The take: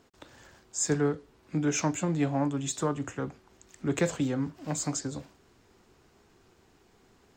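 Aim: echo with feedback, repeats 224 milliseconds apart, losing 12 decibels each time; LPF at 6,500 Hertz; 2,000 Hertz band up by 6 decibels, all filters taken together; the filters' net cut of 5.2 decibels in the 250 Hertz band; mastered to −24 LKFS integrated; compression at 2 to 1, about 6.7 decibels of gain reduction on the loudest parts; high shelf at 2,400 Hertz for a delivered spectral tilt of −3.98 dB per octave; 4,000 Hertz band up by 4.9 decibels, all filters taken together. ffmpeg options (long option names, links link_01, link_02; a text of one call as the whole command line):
ffmpeg -i in.wav -af "lowpass=6500,equalizer=frequency=250:width_type=o:gain=-7,equalizer=frequency=2000:width_type=o:gain=7.5,highshelf=frequency=2400:gain=-3.5,equalizer=frequency=4000:width_type=o:gain=8.5,acompressor=threshold=-35dB:ratio=2,aecho=1:1:224|448|672:0.251|0.0628|0.0157,volume=13dB" out.wav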